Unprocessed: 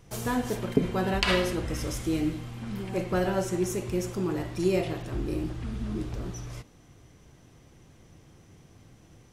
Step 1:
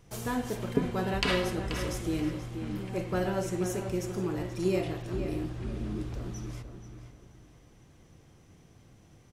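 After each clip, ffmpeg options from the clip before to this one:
-filter_complex "[0:a]asplit=2[a][b];[b]adelay=482,lowpass=f=3.1k:p=1,volume=-8dB,asplit=2[c][d];[d]adelay=482,lowpass=f=3.1k:p=1,volume=0.34,asplit=2[e][f];[f]adelay=482,lowpass=f=3.1k:p=1,volume=0.34,asplit=2[g][h];[h]adelay=482,lowpass=f=3.1k:p=1,volume=0.34[i];[a][c][e][g][i]amix=inputs=5:normalize=0,volume=-3.5dB"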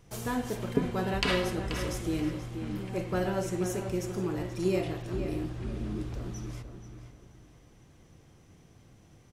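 -af anull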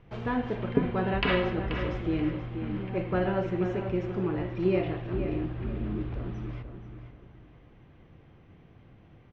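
-af "lowpass=f=3k:w=0.5412,lowpass=f=3k:w=1.3066,volume=2.5dB"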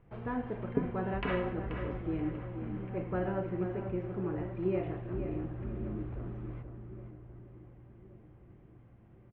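-filter_complex "[0:a]lowpass=1.9k,asplit=2[a][b];[b]adelay=1123,lowpass=f=1.1k:p=1,volume=-15dB,asplit=2[c][d];[d]adelay=1123,lowpass=f=1.1k:p=1,volume=0.48,asplit=2[e][f];[f]adelay=1123,lowpass=f=1.1k:p=1,volume=0.48,asplit=2[g][h];[h]adelay=1123,lowpass=f=1.1k:p=1,volume=0.48[i];[a][c][e][g][i]amix=inputs=5:normalize=0,volume=-6dB"

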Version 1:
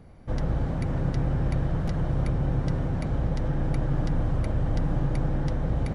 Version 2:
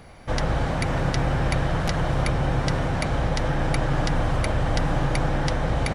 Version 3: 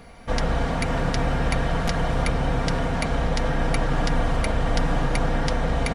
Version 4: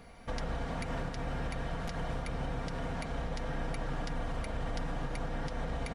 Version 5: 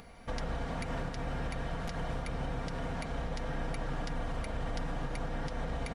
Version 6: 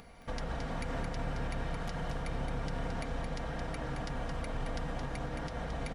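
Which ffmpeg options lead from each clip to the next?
-af "firequalizer=gain_entry='entry(210,0);entry(710,9);entry(2400,14)':delay=0.05:min_phase=1,volume=1.5dB"
-af "aecho=1:1:4.3:0.45"
-af "alimiter=limit=-19dB:level=0:latency=1:release=239,volume=-7.5dB"
-af "acompressor=mode=upward:threshold=-51dB:ratio=2.5"
-af "aecho=1:1:220:0.531,volume=-1.5dB"

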